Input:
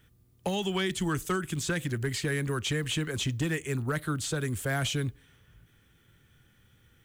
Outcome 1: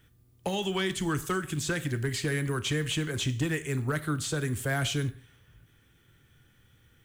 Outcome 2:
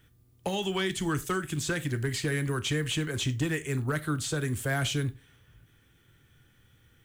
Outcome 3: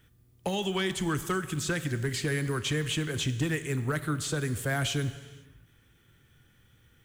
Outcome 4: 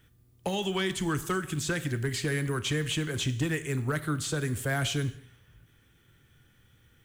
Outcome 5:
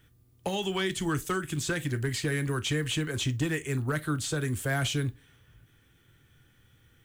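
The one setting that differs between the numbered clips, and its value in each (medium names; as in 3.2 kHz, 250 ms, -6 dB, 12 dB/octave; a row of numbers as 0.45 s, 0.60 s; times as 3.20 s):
gated-style reverb, gate: 190 ms, 120 ms, 540 ms, 270 ms, 80 ms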